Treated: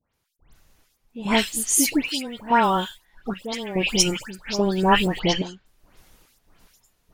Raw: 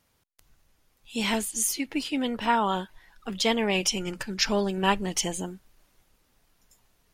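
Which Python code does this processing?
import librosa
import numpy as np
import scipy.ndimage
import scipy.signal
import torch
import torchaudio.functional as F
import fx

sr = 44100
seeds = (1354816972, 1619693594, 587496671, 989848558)

p1 = fx.block_float(x, sr, bits=7)
p2 = fx.steep_lowpass(p1, sr, hz=4600.0, slope=36, at=(5.06, 5.53))
p3 = fx.rider(p2, sr, range_db=10, speed_s=0.5)
p4 = p2 + (p3 * 10.0 ** (2.0 / 20.0))
p5 = fx.step_gate(p4, sr, bpm=72, pattern='..xx..xxxx..xx.x', floor_db=-12.0, edge_ms=4.5)
y = fx.dispersion(p5, sr, late='highs', ms=140.0, hz=2200.0)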